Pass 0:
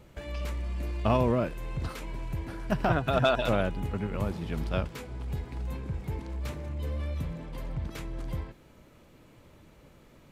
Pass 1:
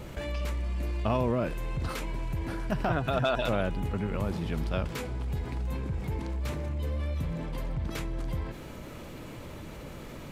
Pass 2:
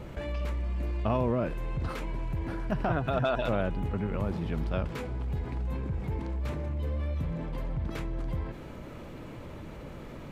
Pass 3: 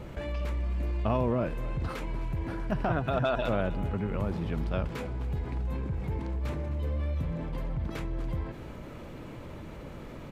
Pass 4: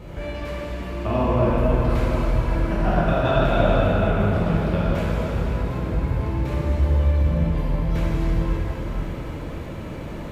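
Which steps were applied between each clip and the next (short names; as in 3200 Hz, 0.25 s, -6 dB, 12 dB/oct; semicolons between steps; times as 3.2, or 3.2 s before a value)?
fast leveller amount 50%; gain -4 dB
high shelf 3600 Hz -11 dB
echo 0.26 s -17 dB
plate-style reverb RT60 4.9 s, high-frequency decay 0.8×, DRR -9 dB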